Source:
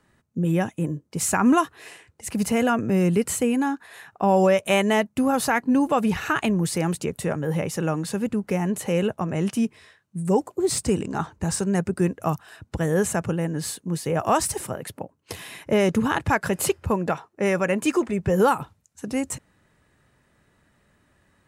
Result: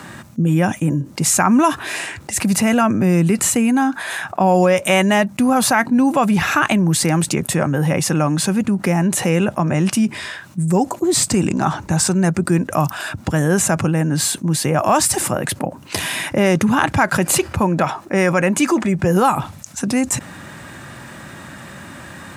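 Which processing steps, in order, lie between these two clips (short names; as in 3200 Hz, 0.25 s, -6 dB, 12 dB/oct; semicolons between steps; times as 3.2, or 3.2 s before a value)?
HPF 120 Hz 12 dB/oct; bell 460 Hz -11.5 dB 0.27 oct; speed mistake 25 fps video run at 24 fps; fast leveller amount 50%; gain +4 dB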